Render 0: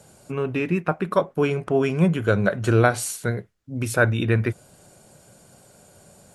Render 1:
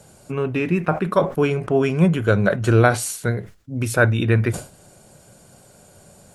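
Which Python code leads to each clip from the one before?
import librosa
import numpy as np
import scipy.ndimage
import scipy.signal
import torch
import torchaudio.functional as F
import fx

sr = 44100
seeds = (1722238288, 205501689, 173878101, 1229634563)

y = fx.low_shelf(x, sr, hz=70.0, db=5.5)
y = fx.sustainer(y, sr, db_per_s=150.0)
y = F.gain(torch.from_numpy(y), 2.0).numpy()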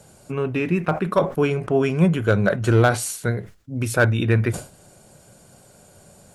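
y = np.clip(x, -10.0 ** (-6.5 / 20.0), 10.0 ** (-6.5 / 20.0))
y = F.gain(torch.from_numpy(y), -1.0).numpy()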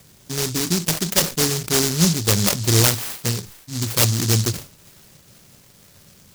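y = fx.echo_wet_highpass(x, sr, ms=485, feedback_pct=68, hz=5300.0, wet_db=-16.0)
y = fx.noise_mod_delay(y, sr, seeds[0], noise_hz=5500.0, depth_ms=0.41)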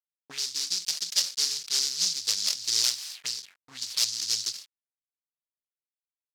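y = fx.quant_dither(x, sr, seeds[1], bits=6, dither='none')
y = fx.auto_wah(y, sr, base_hz=540.0, top_hz=4900.0, q=2.6, full_db=-21.5, direction='up')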